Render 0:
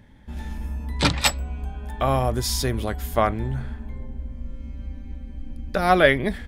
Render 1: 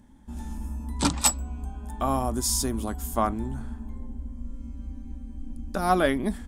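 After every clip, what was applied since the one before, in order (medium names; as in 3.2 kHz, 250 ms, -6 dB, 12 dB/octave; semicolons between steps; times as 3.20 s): graphic EQ 125/250/500/1000/2000/4000/8000 Hz -10/+7/-8/+4/-11/-6/+9 dB; trim -2 dB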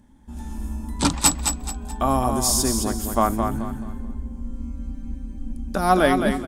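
level rider gain up to 5 dB; feedback delay 215 ms, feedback 32%, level -6 dB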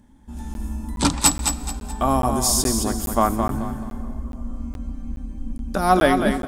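plate-style reverb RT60 4.2 s, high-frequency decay 0.6×, DRR 16.5 dB; crackling interface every 0.42 s, samples 512, zero, from 0.54 s; trim +1 dB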